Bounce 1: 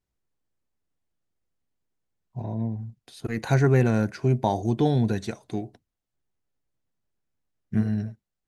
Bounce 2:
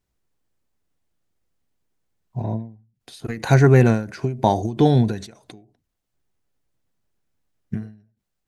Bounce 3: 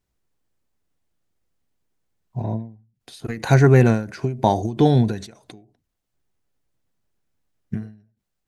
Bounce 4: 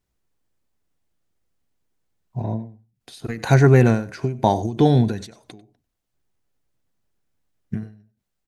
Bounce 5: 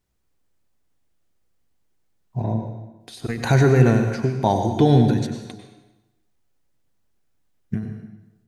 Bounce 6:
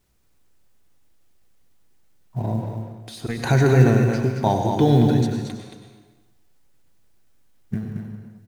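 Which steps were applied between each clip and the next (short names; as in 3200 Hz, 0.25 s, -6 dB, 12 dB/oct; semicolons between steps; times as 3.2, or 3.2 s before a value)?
ending taper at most 120 dB/s; gain +6.5 dB
nothing audible
echo 95 ms -19.5 dB
limiter -8 dBFS, peak gain reduction 6.5 dB; plate-style reverb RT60 0.99 s, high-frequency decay 0.9×, pre-delay 85 ms, DRR 6 dB; gain +1.5 dB
G.711 law mismatch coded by mu; on a send: echo 0.225 s -6.5 dB; on the sum: gain -1.5 dB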